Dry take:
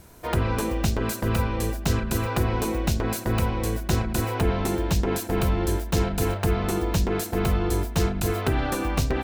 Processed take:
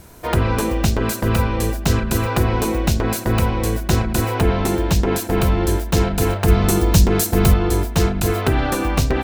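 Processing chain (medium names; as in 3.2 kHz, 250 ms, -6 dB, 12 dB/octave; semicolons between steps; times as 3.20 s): 6.48–7.54 s: tone controls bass +5 dB, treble +7 dB; trim +6 dB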